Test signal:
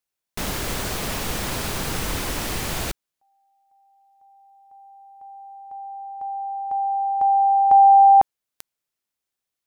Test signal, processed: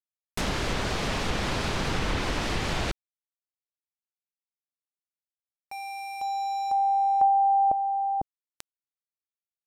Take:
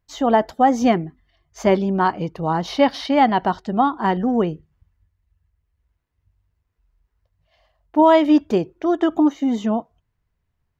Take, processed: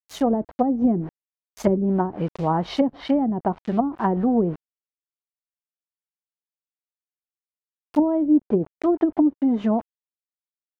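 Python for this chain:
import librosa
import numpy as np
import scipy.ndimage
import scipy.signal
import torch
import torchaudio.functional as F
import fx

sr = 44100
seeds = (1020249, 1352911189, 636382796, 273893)

y = np.where(np.abs(x) >= 10.0 ** (-34.5 / 20.0), x, 0.0)
y = fx.env_lowpass_down(y, sr, base_hz=320.0, full_db=-13.0)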